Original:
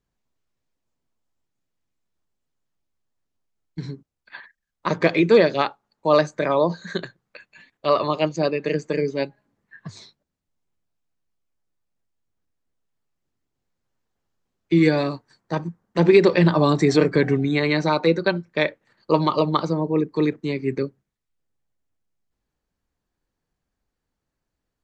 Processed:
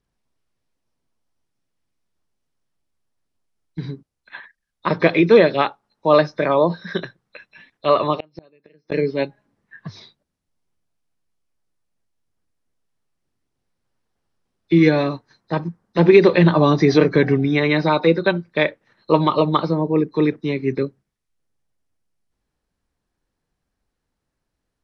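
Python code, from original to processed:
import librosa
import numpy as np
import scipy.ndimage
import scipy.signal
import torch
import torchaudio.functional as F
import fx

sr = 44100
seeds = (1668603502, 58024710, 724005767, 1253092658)

y = fx.freq_compress(x, sr, knee_hz=3500.0, ratio=1.5)
y = fx.gate_flip(y, sr, shuts_db=-16.0, range_db=-34, at=(8.14, 8.92))
y = y * librosa.db_to_amplitude(3.0)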